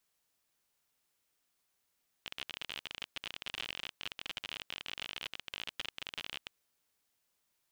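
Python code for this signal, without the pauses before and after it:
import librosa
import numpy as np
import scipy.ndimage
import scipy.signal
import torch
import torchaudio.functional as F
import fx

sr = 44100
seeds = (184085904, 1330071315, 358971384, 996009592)

y = fx.geiger_clicks(sr, seeds[0], length_s=4.23, per_s=41.0, level_db=-23.0)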